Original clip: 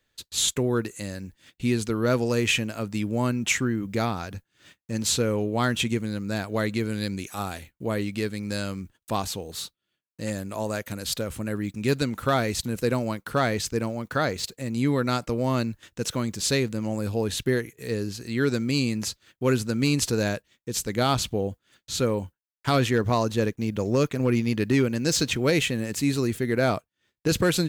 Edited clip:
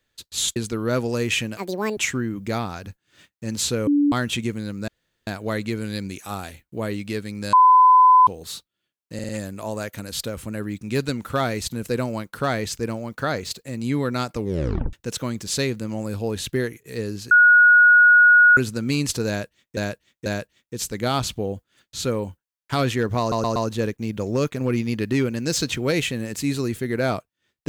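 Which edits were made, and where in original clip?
0:00.56–0:01.73: remove
0:02.74–0:03.44: play speed 175%
0:05.34–0:05.59: beep over 289 Hz −14.5 dBFS
0:06.35: splice in room tone 0.39 s
0:08.61–0:09.35: beep over 1,010 Hz −9 dBFS
0:10.22: stutter 0.05 s, 4 plays
0:15.30: tape stop 0.56 s
0:18.24–0:19.50: beep over 1,450 Hz −9 dBFS
0:20.21–0:20.70: repeat, 3 plays
0:23.15: stutter 0.12 s, 4 plays

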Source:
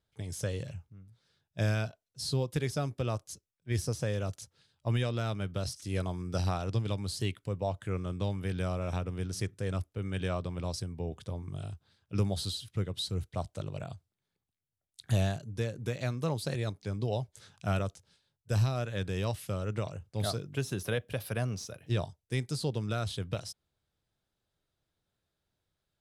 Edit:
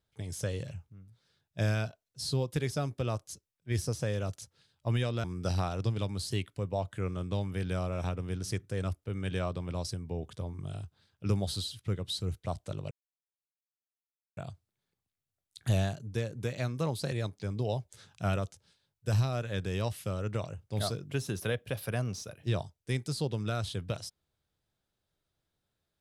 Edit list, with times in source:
0:05.24–0:06.13: remove
0:13.80: splice in silence 1.46 s

